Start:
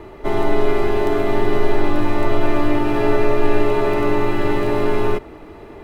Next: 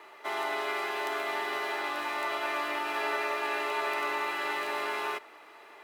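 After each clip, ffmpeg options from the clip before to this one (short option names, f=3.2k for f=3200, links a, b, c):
-af "highpass=1.1k,volume=-2.5dB"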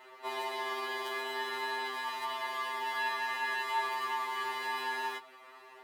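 -af "afftfilt=real='re*2.45*eq(mod(b,6),0)':imag='im*2.45*eq(mod(b,6),0)':win_size=2048:overlap=0.75"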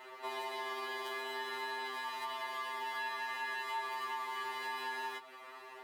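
-af "acompressor=threshold=-45dB:ratio=2,volume=2.5dB"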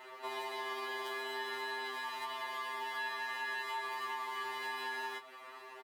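-filter_complex "[0:a]asplit=2[a][b];[b]adelay=25,volume=-13.5dB[c];[a][c]amix=inputs=2:normalize=0"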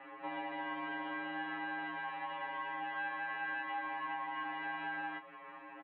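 -af "highpass=f=170:t=q:w=0.5412,highpass=f=170:t=q:w=1.307,lowpass=f=2.8k:t=q:w=0.5176,lowpass=f=2.8k:t=q:w=0.7071,lowpass=f=2.8k:t=q:w=1.932,afreqshift=-90"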